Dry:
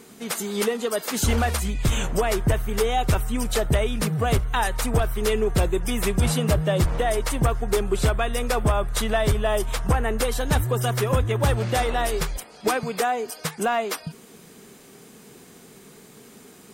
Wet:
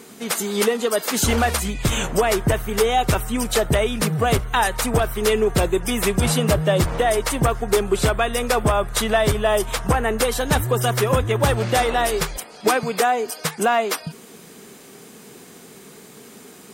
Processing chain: bass shelf 95 Hz -10 dB; trim +5 dB

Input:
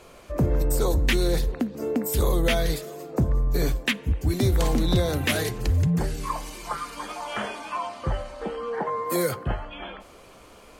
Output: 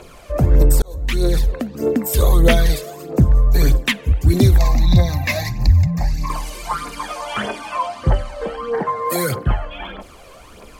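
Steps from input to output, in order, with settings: 4.58–6.30 s: static phaser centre 2.1 kHz, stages 8; phaser 1.6 Hz, delay 2 ms, feedback 55%; 0.82–1.91 s: fade in equal-power; trim +5 dB

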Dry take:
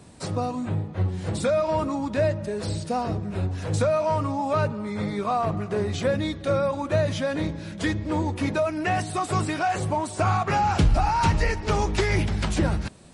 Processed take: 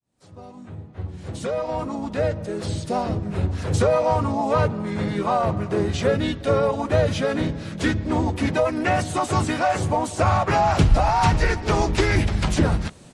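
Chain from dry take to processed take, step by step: fade-in on the opening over 3.40 s; harmony voices -4 st -4 dB, +4 st -17 dB; trim +2 dB

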